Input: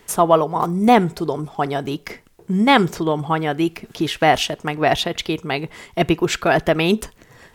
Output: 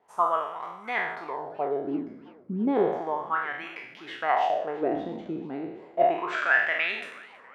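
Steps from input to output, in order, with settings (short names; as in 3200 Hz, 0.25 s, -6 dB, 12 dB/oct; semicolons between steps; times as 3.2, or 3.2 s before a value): spectral trails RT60 0.89 s; dynamic EQ 510 Hz, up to +4 dB, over -25 dBFS, Q 0.77; wah 0.33 Hz 230–2100 Hz, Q 3.8; bell 84 Hz +5 dB 2.2 oct, from 4.29 s 1800 Hz; warbling echo 0.327 s, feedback 61%, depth 207 cents, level -23.5 dB; gain -5.5 dB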